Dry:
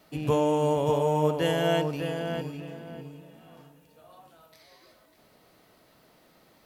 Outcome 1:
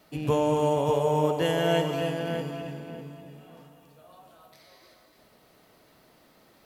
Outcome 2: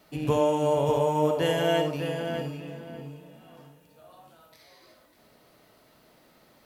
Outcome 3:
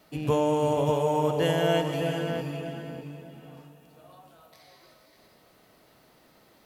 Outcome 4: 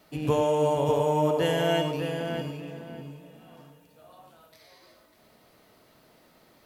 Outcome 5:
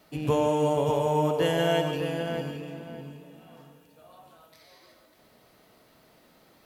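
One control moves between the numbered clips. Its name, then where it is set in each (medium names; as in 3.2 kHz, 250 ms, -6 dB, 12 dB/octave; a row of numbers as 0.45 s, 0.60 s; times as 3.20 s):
gated-style reverb, gate: 340 ms, 90 ms, 530 ms, 130 ms, 190 ms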